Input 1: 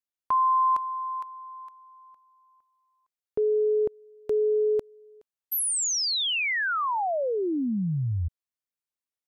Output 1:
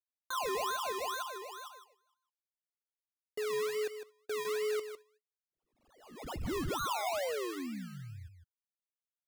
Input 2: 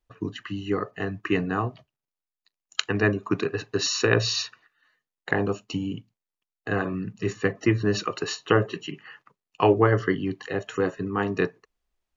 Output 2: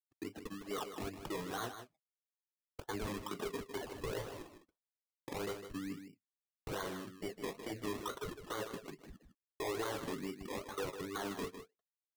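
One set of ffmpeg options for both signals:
-af "afftdn=nr=17:nf=-35,highpass=f=240:p=1,agate=range=-42dB:threshold=-53dB:ratio=16:release=123:detection=rms,lowpass=f=2.2k:w=0.5412,lowpass=f=2.2k:w=1.3066,lowshelf=f=480:g=-10.5,acompressor=threshold=-29dB:ratio=8:attack=0.47:release=57:knee=1:detection=peak,acrusher=samples=24:mix=1:aa=0.000001:lfo=1:lforange=14.4:lforate=2.3,asoftclip=type=tanh:threshold=-29dB,flanger=delay=2:depth=2.8:regen=-52:speed=0.73:shape=sinusoidal,aecho=1:1:155:0.335,volume=2dB"

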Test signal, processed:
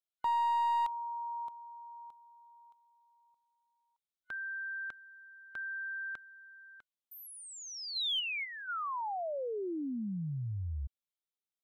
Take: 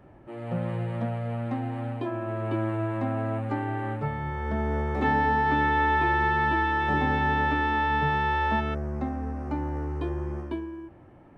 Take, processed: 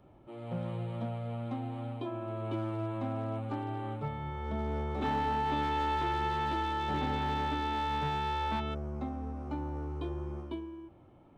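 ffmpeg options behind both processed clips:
-filter_complex "[0:a]superequalizer=11b=0.398:13b=2,aeval=exprs='clip(val(0),-1,0.0794)':c=same,acrossover=split=4200[a][b];[b]acompressor=threshold=-45dB:ratio=4:attack=1:release=60[c];[a][c]amix=inputs=2:normalize=0,volume=-6.5dB"

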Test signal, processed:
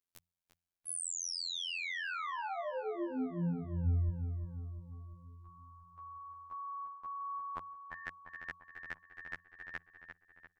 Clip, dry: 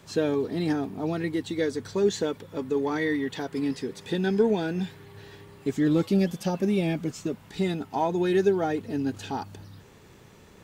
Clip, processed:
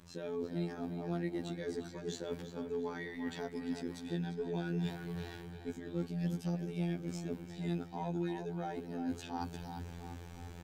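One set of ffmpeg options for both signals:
-filter_complex "[0:a]areverse,acompressor=threshold=-38dB:ratio=5,areverse,lowshelf=f=200:g=9,bandreject=f=50:t=h:w=6,bandreject=f=100:t=h:w=6,bandreject=f=150:t=h:w=6,afftfilt=real='hypot(re,im)*cos(PI*b)':imag='0':win_size=2048:overlap=0.75,asplit=2[a][b];[b]adelay=347,lowpass=f=3.4k:p=1,volume=-7.5dB,asplit=2[c][d];[d]adelay=347,lowpass=f=3.4k:p=1,volume=0.55,asplit=2[e][f];[f]adelay=347,lowpass=f=3.4k:p=1,volume=0.55,asplit=2[g][h];[h]adelay=347,lowpass=f=3.4k:p=1,volume=0.55,asplit=2[i][j];[j]adelay=347,lowpass=f=3.4k:p=1,volume=0.55,asplit=2[k][l];[l]adelay=347,lowpass=f=3.4k:p=1,volume=0.55,asplit=2[m][n];[n]adelay=347,lowpass=f=3.4k:p=1,volume=0.55[o];[a][c][e][g][i][k][m][o]amix=inputs=8:normalize=0,volume=2dB"

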